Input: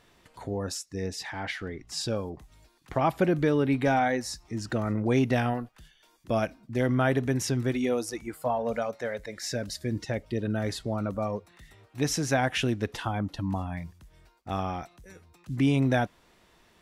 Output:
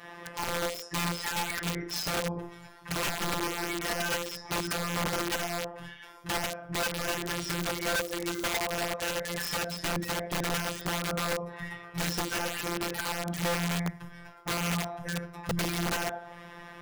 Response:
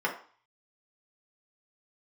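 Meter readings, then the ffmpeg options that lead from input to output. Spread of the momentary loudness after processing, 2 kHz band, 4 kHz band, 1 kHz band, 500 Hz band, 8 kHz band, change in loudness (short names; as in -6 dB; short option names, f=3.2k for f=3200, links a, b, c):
9 LU, +2.5 dB, +5.0 dB, -2.0 dB, -5.5 dB, +3.5 dB, -2.5 dB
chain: -filter_complex "[0:a]aeval=exprs='0.158*(abs(mod(val(0)/0.158+3,4)-2)-1)':c=same,bandreject=f=50:t=h:w=6,bandreject=f=100:t=h:w=6,bandreject=f=150:t=h:w=6,bandreject=f=200:t=h:w=6,bandreject=f=250:t=h:w=6,bandreject=f=300:t=h:w=6,bandreject=f=350:t=h:w=6,bandreject=f=400:t=h:w=6,bandreject=f=450:t=h:w=6,bandreject=f=500:t=h:w=6[a];[1:a]atrim=start_sample=2205[b];[a][b]afir=irnorm=-1:irlink=0,afftfilt=real='hypot(re,im)*cos(PI*b)':imag='0':win_size=1024:overlap=0.75,apsyclip=12dB,dynaudnorm=f=680:g=9:m=4dB,asubboost=boost=10.5:cutoff=96,acompressor=threshold=-27dB:ratio=8,aeval=exprs='(mod(16.8*val(0)+1,2)-1)/16.8':c=same"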